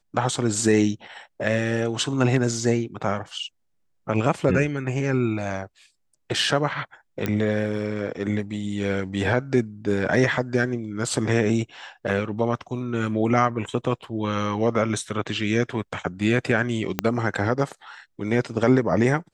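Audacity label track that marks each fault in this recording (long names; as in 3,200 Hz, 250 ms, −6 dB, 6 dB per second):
7.260000	7.260000	click −11 dBFS
16.990000	16.990000	click −6 dBFS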